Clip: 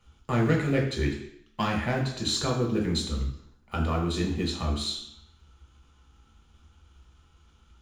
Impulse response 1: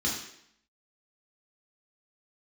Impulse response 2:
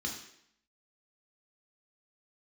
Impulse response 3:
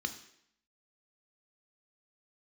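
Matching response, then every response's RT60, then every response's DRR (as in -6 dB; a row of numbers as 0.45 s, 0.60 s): 2; 0.70 s, 0.70 s, 0.70 s; -4.5 dB, -0.5 dB, 7.0 dB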